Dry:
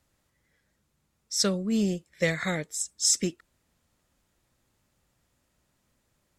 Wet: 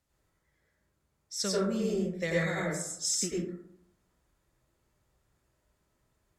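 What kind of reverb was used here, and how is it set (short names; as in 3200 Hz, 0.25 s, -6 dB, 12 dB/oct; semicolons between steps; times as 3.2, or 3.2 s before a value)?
plate-style reverb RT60 0.77 s, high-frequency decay 0.3×, pre-delay 80 ms, DRR -5.5 dB; gain -8.5 dB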